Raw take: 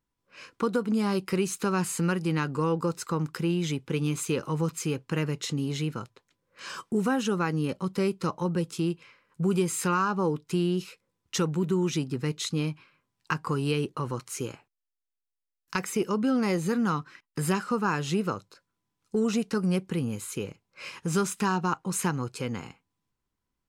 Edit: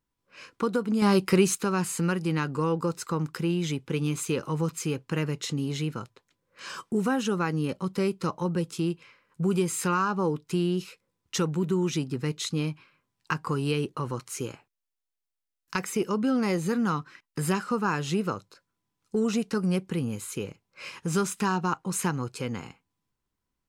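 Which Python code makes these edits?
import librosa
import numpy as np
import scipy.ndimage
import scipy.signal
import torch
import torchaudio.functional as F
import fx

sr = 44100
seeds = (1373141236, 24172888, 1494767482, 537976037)

y = fx.edit(x, sr, fx.clip_gain(start_s=1.02, length_s=0.53, db=6.0), tone=tone)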